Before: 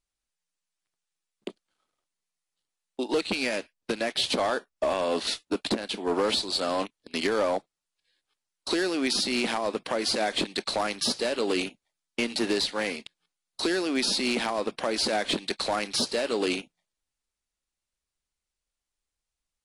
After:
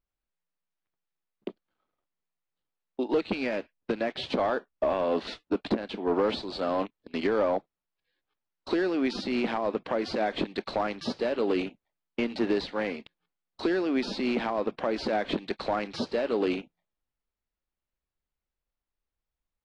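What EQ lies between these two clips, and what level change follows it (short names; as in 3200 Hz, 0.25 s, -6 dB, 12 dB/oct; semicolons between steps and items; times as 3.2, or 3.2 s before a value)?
tape spacing loss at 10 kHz 32 dB; +2.0 dB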